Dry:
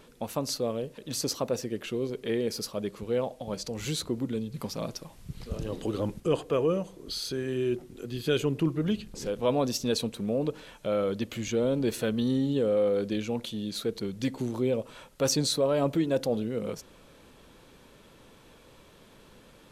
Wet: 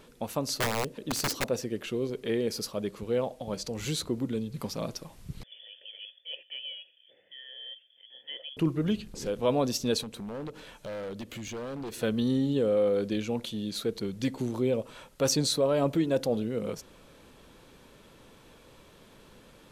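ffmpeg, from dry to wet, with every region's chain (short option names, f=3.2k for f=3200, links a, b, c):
-filter_complex "[0:a]asettb=1/sr,asplit=3[a][b][c];[a]atrim=end=0.574[d];[b]atrim=start=0.57:end=1.44,asetpts=PTS-STARTPTS,afade=t=in:d=0.004:c=qsin,afade=t=out:st=0.866:d=0.004:c=qsin,equalizer=f=280:t=o:w=1.4:g=6.5,aeval=exprs='(mod(12.6*val(0)+1,2)-1)/12.6':c=same[e];[c]atrim=start=1.436[f];[d][e]acrossfade=d=0.004:c1=hsin:c2=qsin[g];[g][f]acrossfade=d=0.004:c1=qsin:c2=hsin,asettb=1/sr,asplit=3[h][i][j];[h]atrim=end=5.434[k];[i]atrim=start=5.43:end=8.57,asetpts=PTS-STARTPTS,afade=t=in:d=0.004:c=qsin,afade=t=out:st=3.136:d=0.004:c=qsin,lowpass=f=3k:t=q:w=0.5098,lowpass=f=3k:t=q:w=0.6013,lowpass=f=3k:t=q:w=0.9,lowpass=f=3k:t=q:w=2.563,afreqshift=-3500,asplit=3[l][m][n];[l]bandpass=f=530:t=q:w=8,volume=0dB[o];[m]bandpass=f=1.84k:t=q:w=8,volume=-6dB[p];[n]bandpass=f=2.48k:t=q:w=8,volume=-9dB[q];[o][p][q]amix=inputs=3:normalize=0[r];[j]atrim=start=8.566[s];[k][r]acrossfade=d=0.004:c1=hsin:c2=qsin[t];[t][s]acrossfade=d=0.004:c1=qsin:c2=hsin,asettb=1/sr,asplit=3[u][v][w];[u]atrim=end=10.024[x];[v]atrim=start=10.02:end=12.03,asetpts=PTS-STARTPTS,afade=t=in:d=0.004:c=qsin,afade=t=out:st=2.006:d=0.004:c=qsin,acompressor=threshold=-38dB:ratio=2:attack=3.2:release=140:knee=1:detection=peak,aeval=exprs='0.0251*(abs(mod(val(0)/0.0251+3,4)-2)-1)':c=same[y];[w]atrim=start=12.026[z];[x][y]acrossfade=d=0.004:c1=hsin:c2=qsin[aa];[aa][z]acrossfade=d=0.004:c1=qsin:c2=hsin"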